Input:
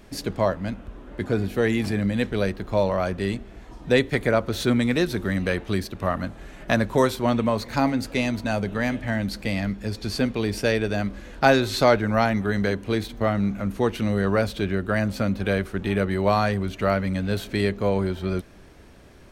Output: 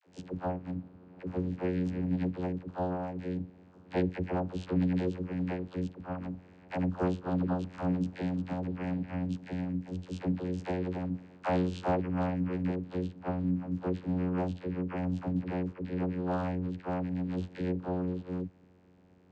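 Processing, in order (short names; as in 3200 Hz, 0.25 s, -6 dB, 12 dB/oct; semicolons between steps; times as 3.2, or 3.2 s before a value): vocoder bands 8, saw 90.6 Hz; dispersion lows, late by 66 ms, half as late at 480 Hz; gain -8 dB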